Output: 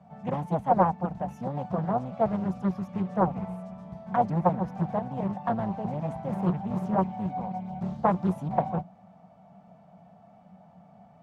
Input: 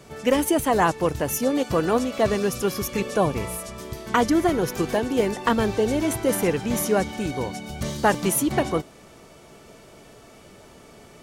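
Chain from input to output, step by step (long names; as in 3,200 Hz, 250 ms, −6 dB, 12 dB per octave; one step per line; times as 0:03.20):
sub-octave generator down 1 octave, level −1 dB
pair of resonant band-passes 370 Hz, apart 2 octaves
highs frequency-modulated by the lows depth 0.57 ms
level +4 dB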